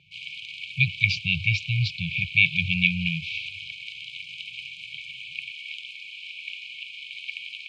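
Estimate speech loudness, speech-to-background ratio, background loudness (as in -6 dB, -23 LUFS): -23.5 LUFS, 12.0 dB, -35.5 LUFS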